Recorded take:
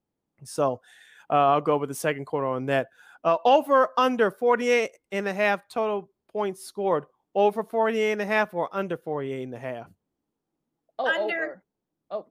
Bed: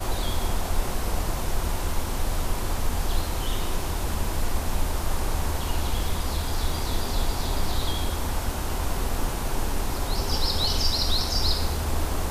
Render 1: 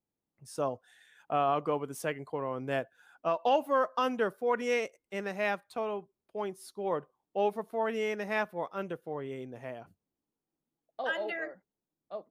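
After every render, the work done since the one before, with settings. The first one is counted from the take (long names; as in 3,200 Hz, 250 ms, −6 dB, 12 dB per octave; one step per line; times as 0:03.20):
level −8 dB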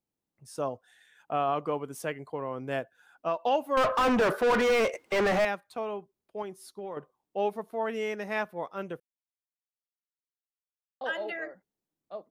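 0:03.77–0:05.45: mid-hump overdrive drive 37 dB, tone 1,600 Hz, clips at −16.5 dBFS
0:06.42–0:06.97: downward compressor, threshold −34 dBFS
0:09.00–0:11.01: silence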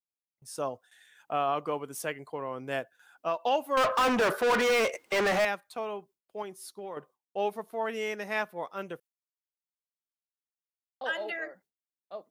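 noise gate with hold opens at −52 dBFS
spectral tilt +1.5 dB per octave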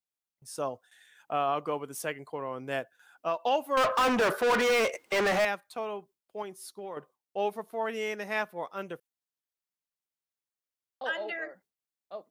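0:11.09–0:11.49: high-frequency loss of the air 51 metres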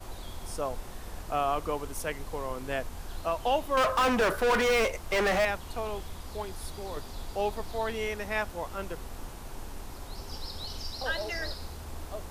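mix in bed −14.5 dB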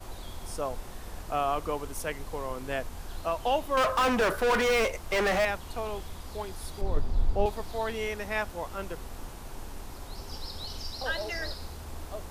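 0:06.81–0:07.46: spectral tilt −3 dB per octave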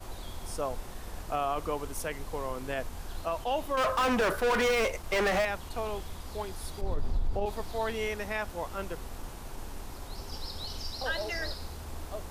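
brickwall limiter −21 dBFS, peak gain reduction 9.5 dB
level that may rise only so fast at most 340 dB per second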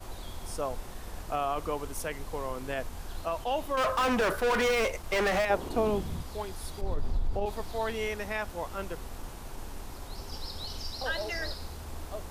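0:05.49–0:06.22: parametric band 500 Hz → 130 Hz +15 dB 2 octaves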